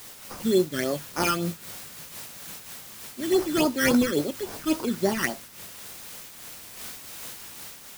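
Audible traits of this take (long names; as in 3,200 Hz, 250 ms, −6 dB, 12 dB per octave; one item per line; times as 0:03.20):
aliases and images of a low sample rate 3,800 Hz, jitter 0%
phaser sweep stages 12, 3.6 Hz, lowest notch 700–3,100 Hz
a quantiser's noise floor 8 bits, dither triangular
amplitude modulation by smooth noise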